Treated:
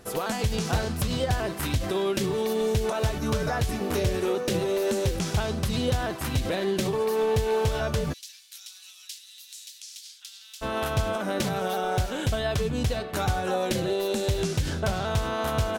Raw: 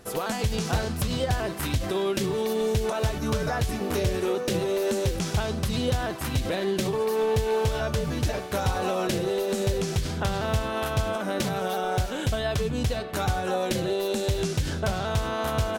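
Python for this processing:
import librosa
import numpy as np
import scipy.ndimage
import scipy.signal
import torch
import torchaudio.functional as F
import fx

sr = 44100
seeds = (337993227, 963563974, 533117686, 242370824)

y = fx.ladder_highpass(x, sr, hz=3000.0, resonance_pct=20, at=(8.12, 10.61), fade=0.02)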